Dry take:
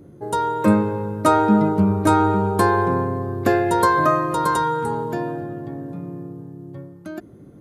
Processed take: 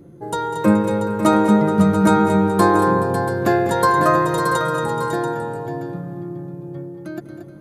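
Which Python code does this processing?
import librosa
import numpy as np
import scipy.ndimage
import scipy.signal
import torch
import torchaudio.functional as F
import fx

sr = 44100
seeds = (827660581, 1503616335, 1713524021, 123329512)

y = x + 0.39 * np.pad(x, (int(5.9 * sr / 1000.0), 0))[:len(x)]
y = fx.echo_multitap(y, sr, ms=(198, 204, 229, 426, 550, 685), db=(-14.5, -19.0, -9.0, -15.5, -8.0, -10.5))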